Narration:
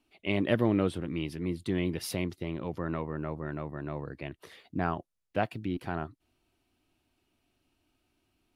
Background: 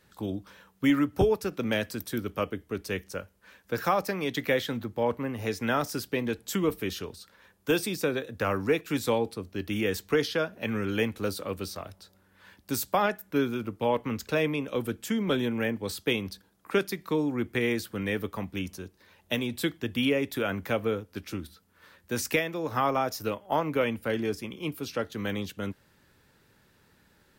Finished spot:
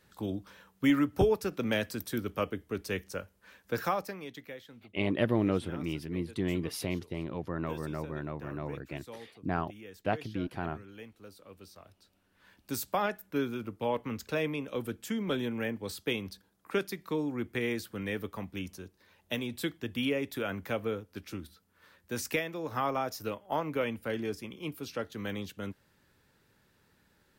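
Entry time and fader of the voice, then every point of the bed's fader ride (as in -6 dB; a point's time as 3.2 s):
4.70 s, -1.5 dB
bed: 3.78 s -2 dB
4.59 s -20.5 dB
11.3 s -20.5 dB
12.69 s -5 dB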